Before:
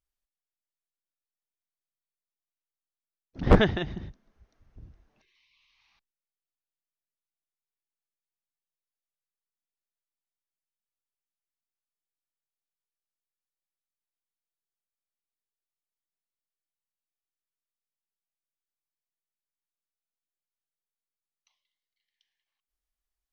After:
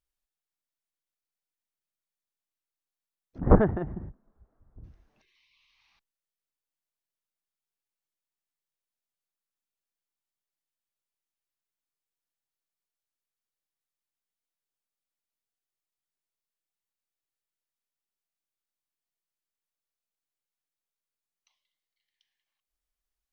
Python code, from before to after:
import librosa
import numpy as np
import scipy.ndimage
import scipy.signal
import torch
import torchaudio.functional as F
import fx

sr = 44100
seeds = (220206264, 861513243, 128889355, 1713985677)

y = fx.lowpass(x, sr, hz=1300.0, slope=24, at=(3.38, 4.84))